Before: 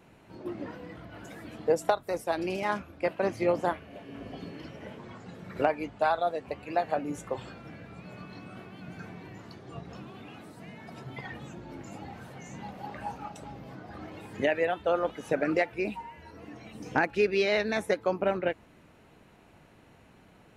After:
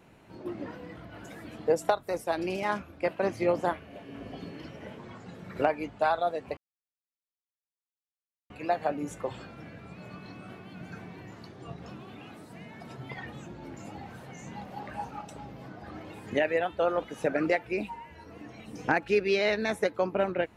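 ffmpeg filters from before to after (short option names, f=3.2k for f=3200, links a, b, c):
-filter_complex "[0:a]asplit=2[a][b];[a]atrim=end=6.57,asetpts=PTS-STARTPTS,afade=t=out:st=6.566:d=0.004:c=hsin,apad=pad_dur=1.93[c];[b]atrim=start=6.57,asetpts=PTS-STARTPTS,afade=t=in:d=0.004:c=hsin[d];[c][d]concat=n=2:v=0:a=1"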